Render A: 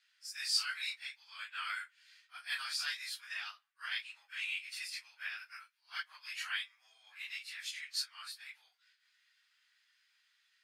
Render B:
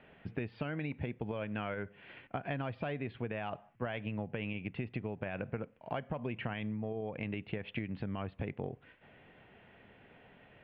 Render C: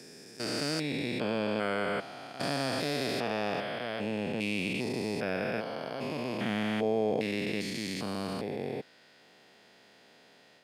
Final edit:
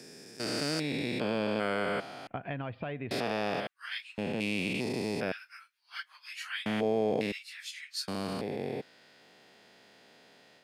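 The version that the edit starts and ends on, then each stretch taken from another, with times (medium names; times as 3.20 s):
C
2.27–3.11 s: from B
3.67–4.18 s: from A
5.32–6.66 s: from A
7.32–8.08 s: from A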